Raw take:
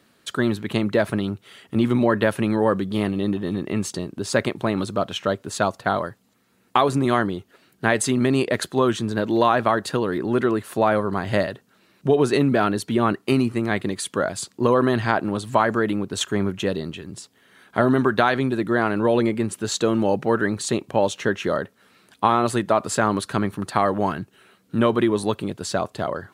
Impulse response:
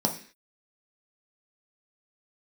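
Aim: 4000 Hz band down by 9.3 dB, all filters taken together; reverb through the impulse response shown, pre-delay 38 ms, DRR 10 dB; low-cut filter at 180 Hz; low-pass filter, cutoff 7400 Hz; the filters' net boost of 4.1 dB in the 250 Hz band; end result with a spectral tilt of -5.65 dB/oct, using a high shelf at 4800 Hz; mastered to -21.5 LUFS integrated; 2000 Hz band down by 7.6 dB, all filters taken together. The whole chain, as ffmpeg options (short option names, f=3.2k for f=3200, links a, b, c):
-filter_complex "[0:a]highpass=180,lowpass=7.4k,equalizer=f=250:t=o:g=6.5,equalizer=f=2k:t=o:g=-9,equalizer=f=4k:t=o:g=-6,highshelf=f=4.8k:g=-5,asplit=2[a][b];[1:a]atrim=start_sample=2205,adelay=38[c];[b][c]afir=irnorm=-1:irlink=0,volume=-19.5dB[d];[a][d]amix=inputs=2:normalize=0,volume=-2.5dB"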